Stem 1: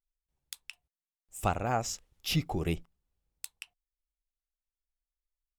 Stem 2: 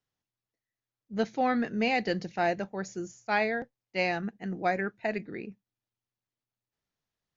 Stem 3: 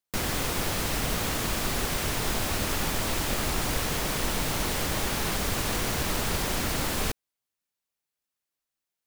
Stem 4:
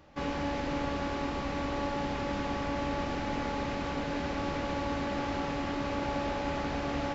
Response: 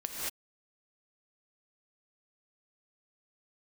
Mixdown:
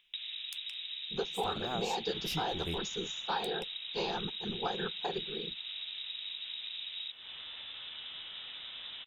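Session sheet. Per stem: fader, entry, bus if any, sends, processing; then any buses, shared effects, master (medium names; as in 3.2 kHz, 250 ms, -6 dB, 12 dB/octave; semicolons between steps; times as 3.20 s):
-6.0 dB, 0.00 s, bus B, no send, none
+2.5 dB, 0.00 s, bus B, no send, peaking EQ 240 Hz -8 dB 0.67 oct; whisper effect; static phaser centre 410 Hz, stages 8
-4.0 dB, 0.00 s, bus A, no send, low-pass 1.4 kHz 24 dB/octave; upward compressor, threshold -42 dBFS
3.27 s -2 dB -> 3.86 s -12 dB, 1.90 s, bus A, no send, none
bus A: 0.0 dB, frequency inversion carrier 3.8 kHz; compression 6:1, threshold -39 dBFS, peak gain reduction 13 dB
bus B: 0.0 dB, peaking EQ 130 Hz -11.5 dB 0.27 oct; compression, threshold -31 dBFS, peak gain reduction 8.5 dB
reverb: none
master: none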